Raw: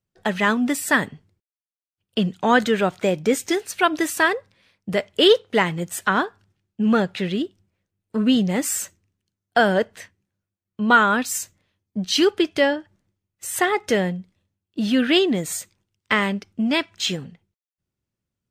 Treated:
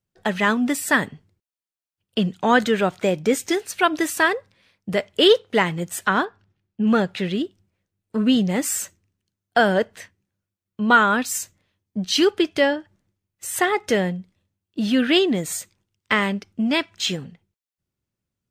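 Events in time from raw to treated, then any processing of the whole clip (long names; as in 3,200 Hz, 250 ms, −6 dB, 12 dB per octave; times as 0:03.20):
0:06.25–0:06.87: high-frequency loss of the air 110 metres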